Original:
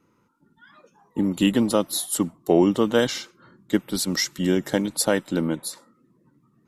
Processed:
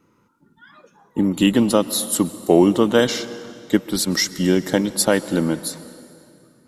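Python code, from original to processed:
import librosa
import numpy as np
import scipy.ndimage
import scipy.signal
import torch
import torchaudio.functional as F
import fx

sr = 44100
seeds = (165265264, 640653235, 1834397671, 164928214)

y = fx.rev_plate(x, sr, seeds[0], rt60_s=2.7, hf_ratio=0.85, predelay_ms=110, drr_db=15.5)
y = F.gain(torch.from_numpy(y), 4.0).numpy()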